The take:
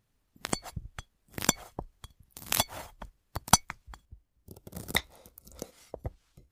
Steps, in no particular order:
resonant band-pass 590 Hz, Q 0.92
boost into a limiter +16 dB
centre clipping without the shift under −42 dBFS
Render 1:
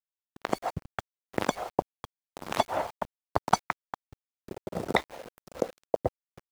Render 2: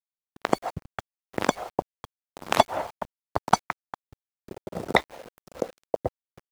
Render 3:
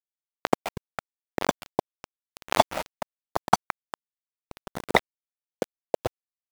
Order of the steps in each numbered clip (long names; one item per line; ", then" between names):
boost into a limiter, then resonant band-pass, then centre clipping without the shift
resonant band-pass, then boost into a limiter, then centre clipping without the shift
resonant band-pass, then centre clipping without the shift, then boost into a limiter